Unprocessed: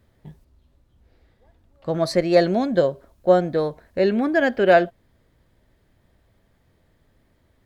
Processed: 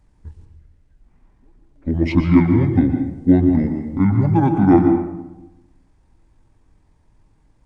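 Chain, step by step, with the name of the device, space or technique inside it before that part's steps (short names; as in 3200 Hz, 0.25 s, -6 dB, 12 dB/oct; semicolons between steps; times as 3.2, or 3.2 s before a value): monster voice (pitch shift -12 st; low shelf 130 Hz +5 dB; reverb RT60 0.95 s, pre-delay 0.112 s, DRR 5.5 dB); gain +1.5 dB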